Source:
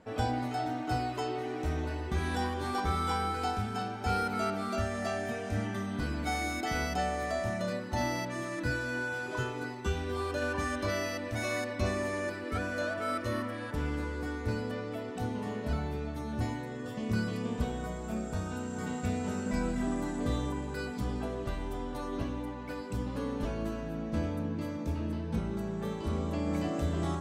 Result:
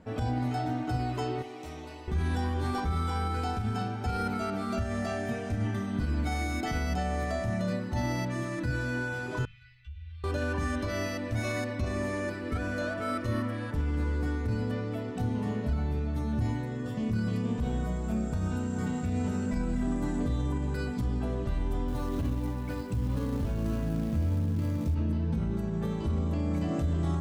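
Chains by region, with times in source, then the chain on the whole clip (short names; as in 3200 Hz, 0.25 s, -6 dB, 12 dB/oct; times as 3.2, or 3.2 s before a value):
1.42–2.08 HPF 1000 Hz 6 dB/oct + bell 1600 Hz -11 dB 0.43 oct
9.45–10.24 inverse Chebyshev band-stop 230–720 Hz, stop band 70 dB + compressor 12:1, threshold -47 dBFS + air absorption 390 m
21.88–24.95 short-mantissa float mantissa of 2-bit + bell 92 Hz +7 dB 0.83 oct
whole clip: tone controls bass +10 dB, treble -1 dB; limiter -21.5 dBFS; notches 50/100/150/200 Hz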